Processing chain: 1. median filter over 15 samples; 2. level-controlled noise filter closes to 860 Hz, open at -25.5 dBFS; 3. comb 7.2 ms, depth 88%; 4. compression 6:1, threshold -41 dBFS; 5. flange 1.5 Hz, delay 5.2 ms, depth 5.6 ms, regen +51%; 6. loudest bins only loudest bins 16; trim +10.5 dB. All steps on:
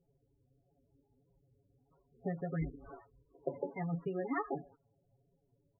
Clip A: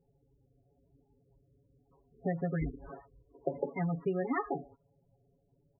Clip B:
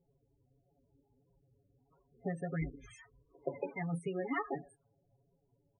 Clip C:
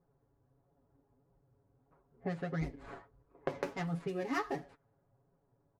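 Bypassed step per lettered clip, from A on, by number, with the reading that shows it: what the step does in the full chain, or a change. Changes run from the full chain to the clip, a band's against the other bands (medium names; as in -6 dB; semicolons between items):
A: 5, loudness change +4.0 LU; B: 1, 2 kHz band +4.0 dB; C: 6, 2 kHz band +4.5 dB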